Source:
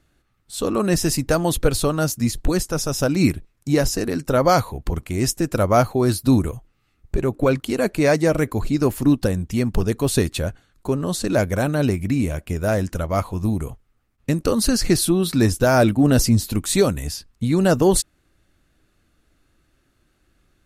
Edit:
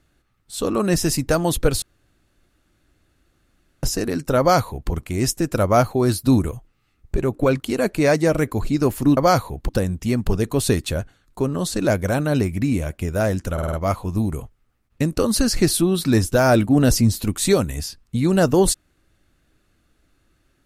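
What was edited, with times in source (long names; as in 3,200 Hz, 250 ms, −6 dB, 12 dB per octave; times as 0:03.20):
0:01.82–0:03.83: fill with room tone
0:04.39–0:04.91: duplicate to 0:09.17
0:13.01: stutter 0.05 s, 5 plays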